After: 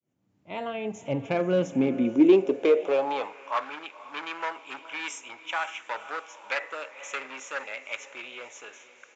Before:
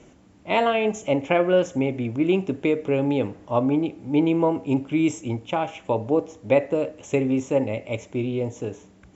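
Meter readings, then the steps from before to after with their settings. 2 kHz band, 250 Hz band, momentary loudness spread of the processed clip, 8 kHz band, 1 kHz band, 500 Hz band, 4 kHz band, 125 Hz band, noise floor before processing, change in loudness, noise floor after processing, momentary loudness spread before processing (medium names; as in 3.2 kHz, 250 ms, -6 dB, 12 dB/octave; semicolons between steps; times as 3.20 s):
-1.0 dB, -5.0 dB, 18 LU, no reading, -4.5 dB, -4.5 dB, -2.5 dB, -11.0 dB, -53 dBFS, -4.0 dB, -63 dBFS, 7 LU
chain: fade-in on the opening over 2.98 s; echo that smears into a reverb 511 ms, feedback 42%, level -15 dB; in parallel at -6 dB: wavefolder -19.5 dBFS; on the sum: high-pass sweep 120 Hz -> 1.4 kHz, 1.37–3.67 s; resampled via 16 kHz; trim -3.5 dB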